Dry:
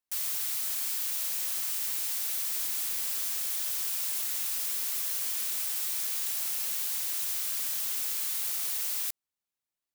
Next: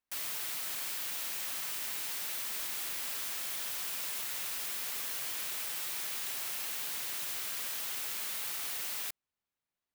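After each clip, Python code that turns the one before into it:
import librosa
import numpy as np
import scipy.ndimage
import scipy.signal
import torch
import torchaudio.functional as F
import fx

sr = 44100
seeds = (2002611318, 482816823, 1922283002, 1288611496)

y = fx.bass_treble(x, sr, bass_db=2, treble_db=-9)
y = y * 10.0 ** (2.5 / 20.0)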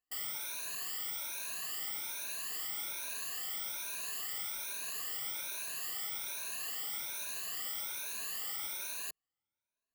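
y = fx.spec_ripple(x, sr, per_octave=1.5, drift_hz=1.2, depth_db=23)
y = y * 10.0 ** (-8.0 / 20.0)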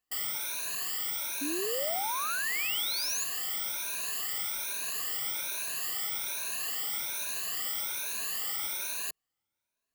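y = fx.spec_paint(x, sr, seeds[0], shape='rise', start_s=1.41, length_s=1.83, low_hz=270.0, high_hz=7200.0, level_db=-40.0)
y = y * 10.0 ** (5.5 / 20.0)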